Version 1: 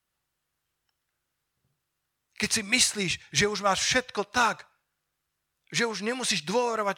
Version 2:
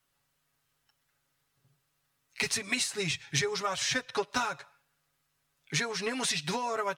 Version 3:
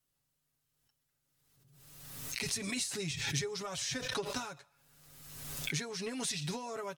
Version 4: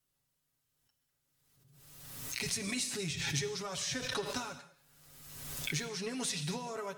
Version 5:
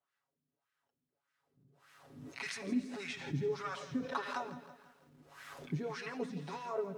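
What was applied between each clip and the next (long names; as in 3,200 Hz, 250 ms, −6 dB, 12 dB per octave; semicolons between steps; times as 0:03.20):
downward compressor 10 to 1, threshold −31 dBFS, peak gain reduction 14 dB; comb filter 7.2 ms, depth 80%; level +2 dB
parametric band 1,400 Hz −10 dB 3 octaves; background raised ahead of every attack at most 38 dB per second; level −2.5 dB
convolution reverb, pre-delay 3 ms, DRR 10.5 dB
LFO wah 1.7 Hz 220–1,700 Hz, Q 2.4; feedback echo at a low word length 165 ms, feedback 55%, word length 12 bits, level −14.5 dB; level +8.5 dB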